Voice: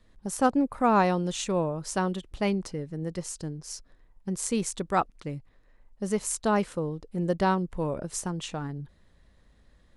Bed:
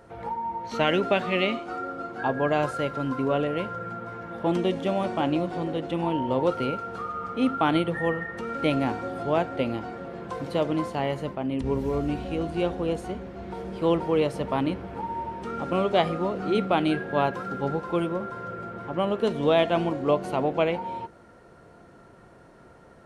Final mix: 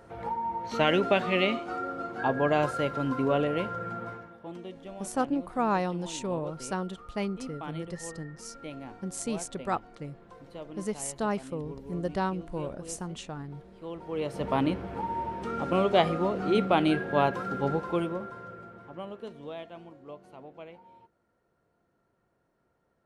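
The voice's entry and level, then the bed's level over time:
4.75 s, -5.0 dB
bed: 4.09 s -1 dB
4.40 s -17 dB
13.92 s -17 dB
14.49 s -0.5 dB
17.76 s -0.5 dB
19.77 s -22 dB

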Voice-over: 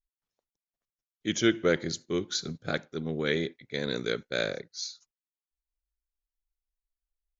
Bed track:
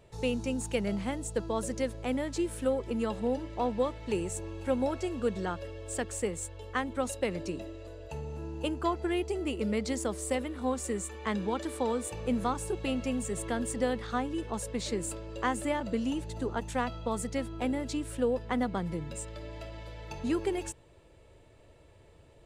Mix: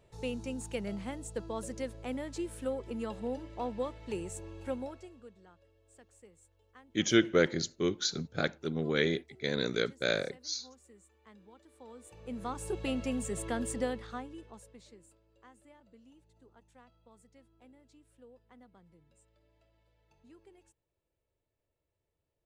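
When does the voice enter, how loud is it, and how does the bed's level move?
5.70 s, -0.5 dB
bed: 4.68 s -6 dB
5.37 s -25.5 dB
11.67 s -25.5 dB
12.73 s -2 dB
13.76 s -2 dB
15.18 s -28 dB

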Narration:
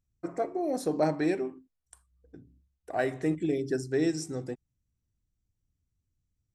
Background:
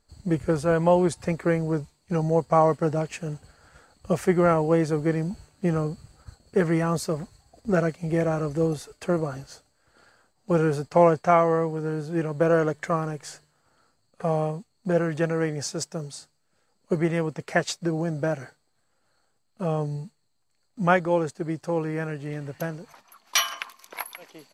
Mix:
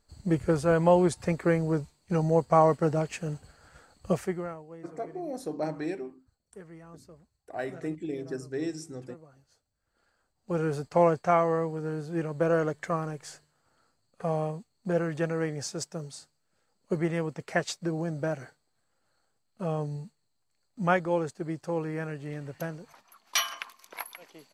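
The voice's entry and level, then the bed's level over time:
4.60 s, -5.5 dB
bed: 4.10 s -1.5 dB
4.66 s -25 dB
9.29 s -25 dB
10.78 s -4.5 dB

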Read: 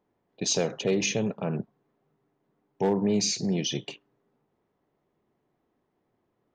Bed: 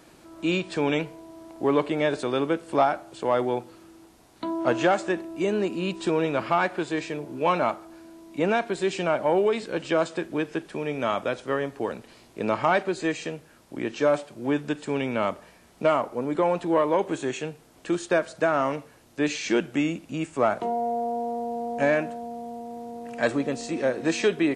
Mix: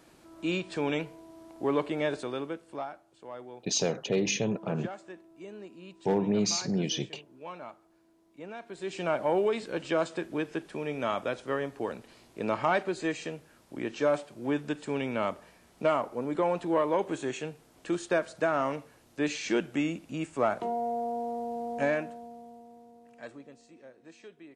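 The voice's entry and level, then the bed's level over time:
3.25 s, -2.0 dB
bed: 2.11 s -5.5 dB
3.04 s -19.5 dB
8.53 s -19.5 dB
9.09 s -4.5 dB
21.78 s -4.5 dB
23.92 s -27.5 dB

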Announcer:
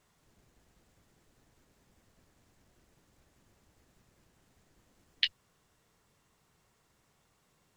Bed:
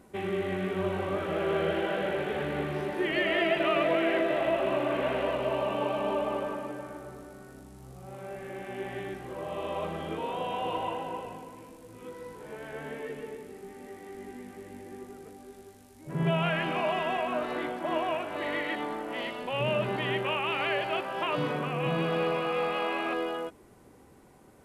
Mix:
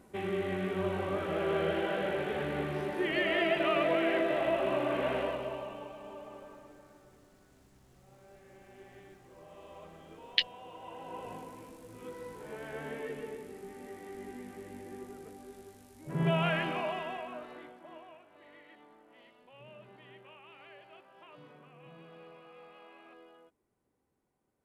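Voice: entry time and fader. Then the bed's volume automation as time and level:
5.15 s, +1.5 dB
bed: 5.18 s -2.5 dB
5.95 s -17 dB
10.76 s -17 dB
11.33 s -1.5 dB
16.55 s -1.5 dB
18.23 s -24.5 dB

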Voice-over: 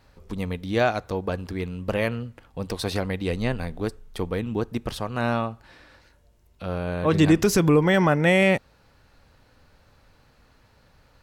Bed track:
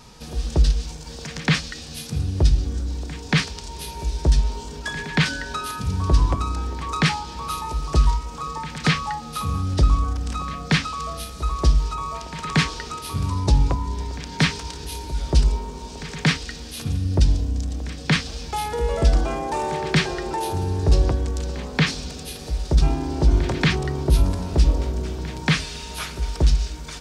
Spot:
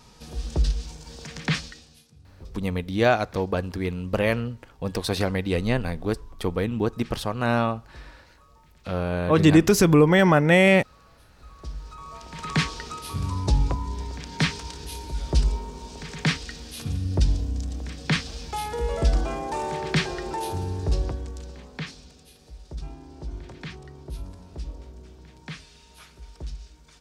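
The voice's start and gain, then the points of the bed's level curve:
2.25 s, +2.0 dB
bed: 1.64 s -5.5 dB
2.16 s -28.5 dB
11.24 s -28.5 dB
12.45 s -4 dB
20.51 s -4 dB
22.29 s -18.5 dB

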